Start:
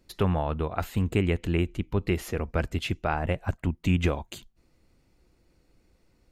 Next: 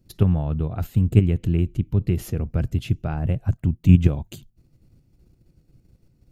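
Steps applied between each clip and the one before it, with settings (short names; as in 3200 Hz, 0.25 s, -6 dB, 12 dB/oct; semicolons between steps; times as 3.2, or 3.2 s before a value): in parallel at +2.5 dB: level quantiser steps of 21 dB; on the sum: ten-band EQ 125 Hz +11 dB, 500 Hz -4 dB, 1000 Hz -9 dB, 2000 Hz -9 dB, 4000 Hz -5 dB, 8000 Hz -5 dB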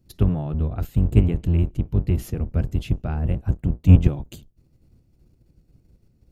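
octaver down 1 oct, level -2 dB; gain -2 dB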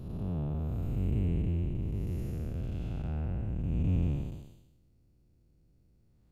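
time blur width 0.429 s; gain -7 dB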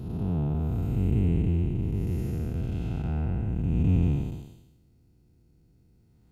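notch comb 570 Hz; gain +7 dB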